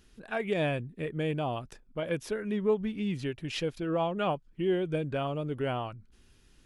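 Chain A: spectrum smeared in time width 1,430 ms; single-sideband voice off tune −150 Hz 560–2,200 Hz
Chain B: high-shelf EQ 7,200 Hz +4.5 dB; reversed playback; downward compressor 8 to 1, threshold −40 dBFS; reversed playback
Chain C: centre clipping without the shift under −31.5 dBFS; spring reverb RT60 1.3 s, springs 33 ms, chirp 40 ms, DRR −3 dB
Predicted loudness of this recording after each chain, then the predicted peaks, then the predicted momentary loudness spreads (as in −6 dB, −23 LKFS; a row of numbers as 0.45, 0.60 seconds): −46.5, −44.0, −27.5 LKFS; −33.5, −31.0, −12.5 dBFS; 5, 6, 9 LU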